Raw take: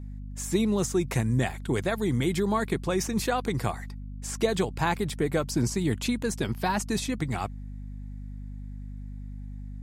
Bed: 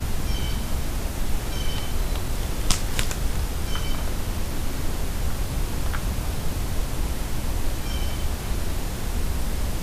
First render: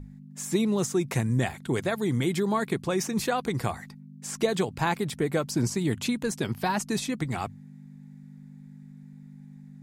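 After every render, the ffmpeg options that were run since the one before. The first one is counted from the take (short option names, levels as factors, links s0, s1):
-af "bandreject=f=50:t=h:w=6,bandreject=f=100:t=h:w=6"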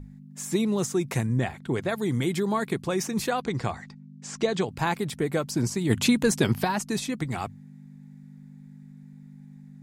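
-filter_complex "[0:a]asettb=1/sr,asplit=3[s0][s1][s2];[s0]atrim=end=1.264[s3];[s1]atrim=start=1.26:end=1.89,asetpts=PTS-STARTPTS,afade=t=in:d=0.004:c=qsin,afade=t=out:st=0.626:d=0.004:c=qsin,lowpass=f=3100:p=1[s4];[s2]atrim=start=1.886[s5];[s3][s4]acrossfade=d=0.004:c1=hsin:c2=qsin[s6];[s6][s5]acrossfade=d=0.004:c1=qsin:c2=hsin,asplit=3[s7][s8][s9];[s7]afade=t=out:st=3.41:d=0.02[s10];[s8]lowpass=f=7300:w=0.5412,lowpass=f=7300:w=1.3066,afade=t=in:st=3.41:d=0.02,afade=t=out:st=4.67:d=0.02[s11];[s9]afade=t=in:st=4.67:d=0.02[s12];[s10][s11][s12]amix=inputs=3:normalize=0,asplit=3[s13][s14][s15];[s13]afade=t=out:st=5.89:d=0.02[s16];[s14]acontrast=81,afade=t=in:st=5.89:d=0.02,afade=t=out:st=6.63:d=0.02[s17];[s15]afade=t=in:st=6.63:d=0.02[s18];[s16][s17][s18]amix=inputs=3:normalize=0"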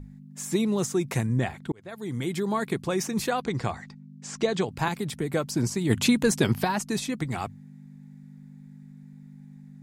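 -filter_complex "[0:a]asettb=1/sr,asplit=3[s0][s1][s2];[s0]atrim=end=4.884[s3];[s1]atrim=start=4.88:end=5.34,asetpts=PTS-STARTPTS,afade=t=in:d=0.004:c=qsin,afade=t=out:st=0.456:d=0.004:c=qsin,acrossover=split=300|3000[s4][s5][s6];[s5]acompressor=threshold=0.0178:ratio=2:attack=3.2:release=140:knee=2.83:detection=peak[s7];[s4][s7][s6]amix=inputs=3:normalize=0[s8];[s2]atrim=start=5.336[s9];[s3][s8]acrossfade=d=0.004:c1=hsin:c2=qsin[s10];[s10][s9]acrossfade=d=0.004:c1=qsin:c2=hsin,asplit=2[s11][s12];[s11]atrim=end=1.72,asetpts=PTS-STARTPTS,afade=t=out:st=1.716:d=0.004:c=hsin[s13];[s12]atrim=start=1.72,asetpts=PTS-STARTPTS,afade=t=in:d=1.15:c=qsin[s14];[s13][s14]concat=n=2:v=0:a=1"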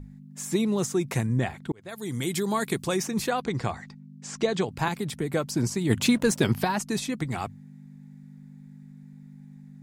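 -filter_complex "[0:a]asplit=3[s0][s1][s2];[s0]afade=t=out:st=1.85:d=0.02[s3];[s1]highshelf=f=4100:g=11.5,afade=t=in:st=1.85:d=0.02,afade=t=out:st=2.96:d=0.02[s4];[s2]afade=t=in:st=2.96:d=0.02[s5];[s3][s4][s5]amix=inputs=3:normalize=0,asettb=1/sr,asplit=3[s6][s7][s8];[s6]atrim=end=6.004[s9];[s7]atrim=start=6:end=6.44,asetpts=PTS-STARTPTS,afade=t=in:d=0.004:c=qsin,afade=t=out:st=0.436:d=0.004:c=qsin,aeval=exprs='sgn(val(0))*max(abs(val(0))-0.00631,0)':c=same[s10];[s8]atrim=start=6.436[s11];[s9][s10]acrossfade=d=0.004:c1=hsin:c2=qsin[s12];[s12][s11]acrossfade=d=0.004:c1=qsin:c2=hsin"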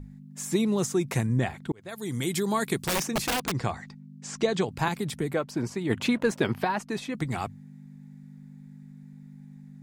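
-filter_complex "[0:a]asettb=1/sr,asplit=3[s0][s1][s2];[s0]atrim=end=2.864[s3];[s1]atrim=start=2.86:end=3.53,asetpts=PTS-STARTPTS,afade=t=in:d=0.004:c=qsin,afade=t=out:st=0.666:d=0.004:c=qsin,aeval=exprs='(mod(11.2*val(0)+1,2)-1)/11.2':c=same[s4];[s2]atrim=start=3.526[s5];[s3][s4]acrossfade=d=0.004:c1=hsin:c2=qsin[s6];[s6][s5]acrossfade=d=0.004:c1=qsin:c2=hsin,asettb=1/sr,asplit=3[s7][s8][s9];[s7]atrim=end=5.334[s10];[s8]atrim=start=5.33:end=7.15,asetpts=PTS-STARTPTS,afade=t=in:d=0.004:c=qsin,afade=t=out:st=1.816:d=0.004:c=qsin,bass=f=250:g=-7,treble=f=4000:g=-12[s11];[s9]atrim=start=7.146[s12];[s10][s11]acrossfade=d=0.004:c1=hsin:c2=qsin[s13];[s13][s12]acrossfade=d=0.004:c1=qsin:c2=hsin"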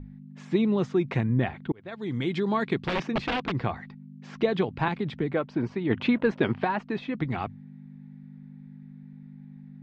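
-af "lowpass=f=3500:w=0.5412,lowpass=f=3500:w=1.3066,equalizer=f=280:w=1.6:g=2.5"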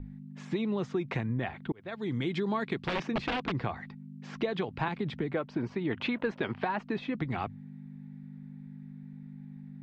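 -filter_complex "[0:a]acrossover=split=510[s0][s1];[s0]alimiter=limit=0.0944:level=0:latency=1:release=477[s2];[s2][s1]amix=inputs=2:normalize=0,acompressor=threshold=0.0355:ratio=2.5"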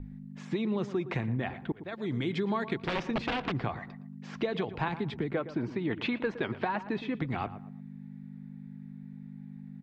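-filter_complex "[0:a]asplit=2[s0][s1];[s1]adelay=115,lowpass=f=1600:p=1,volume=0.237,asplit=2[s2][s3];[s3]adelay=115,lowpass=f=1600:p=1,volume=0.34,asplit=2[s4][s5];[s5]adelay=115,lowpass=f=1600:p=1,volume=0.34[s6];[s0][s2][s4][s6]amix=inputs=4:normalize=0"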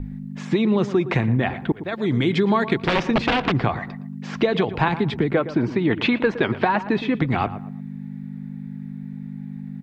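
-af "volume=3.76"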